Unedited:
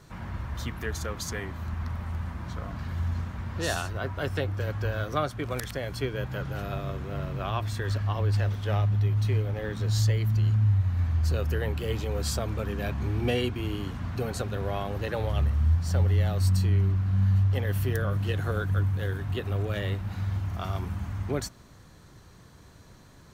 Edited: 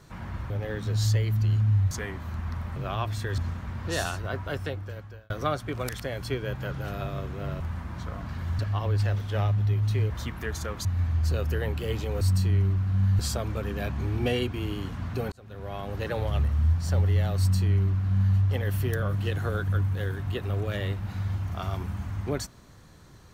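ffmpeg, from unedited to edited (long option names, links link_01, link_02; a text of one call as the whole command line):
ffmpeg -i in.wav -filter_complex "[0:a]asplit=13[link_01][link_02][link_03][link_04][link_05][link_06][link_07][link_08][link_09][link_10][link_11][link_12][link_13];[link_01]atrim=end=0.502[link_14];[link_02]atrim=start=9.438:end=10.852[link_15];[link_03]atrim=start=1.248:end=2.102[link_16];[link_04]atrim=start=7.308:end=7.932[link_17];[link_05]atrim=start=3.088:end=5.01,asetpts=PTS-STARTPTS,afade=type=out:start_time=1.002:duration=0.92[link_18];[link_06]atrim=start=5.01:end=7.312,asetpts=PTS-STARTPTS,afade=type=in:duration=0.004:curve=hsin[link_19];[link_07]atrim=start=2.098:end=3.092[link_20];[link_08]atrim=start=7.928:end=9.442[link_21];[link_09]atrim=start=0.498:end=1.252[link_22];[link_10]atrim=start=10.848:end=12.212[link_23];[link_11]atrim=start=16.398:end=17.382[link_24];[link_12]atrim=start=12.208:end=14.34,asetpts=PTS-STARTPTS,afade=type=out:start_time=2.128:duration=0.004:curve=hsin[link_25];[link_13]atrim=start=14.34,asetpts=PTS-STARTPTS,afade=type=in:duration=0.73[link_26];[link_14][link_15]acrossfade=duration=0.004:curve1=hsin:curve2=hsin[link_27];[link_27][link_16]acrossfade=duration=0.004:curve1=hsin:curve2=hsin[link_28];[link_28][link_17]acrossfade=duration=0.004:curve1=hsin:curve2=hsin[link_29];[link_18][link_19]concat=n=2:v=0:a=1[link_30];[link_29][link_30]acrossfade=duration=0.004:curve1=hsin:curve2=hsin[link_31];[link_31][link_20]acrossfade=duration=0.004:curve1=hsin:curve2=hsin[link_32];[link_32][link_21]acrossfade=duration=0.004:curve1=hsin:curve2=hsin[link_33];[link_33][link_22]acrossfade=duration=0.004:curve1=hsin:curve2=hsin[link_34];[link_34][link_23]acrossfade=duration=0.004:curve1=hsin:curve2=hsin[link_35];[link_35][link_24]acrossfade=duration=0.004:curve1=hsin:curve2=hsin[link_36];[link_25][link_26]concat=n=2:v=0:a=1[link_37];[link_36][link_37]acrossfade=duration=0.004:curve1=hsin:curve2=hsin" out.wav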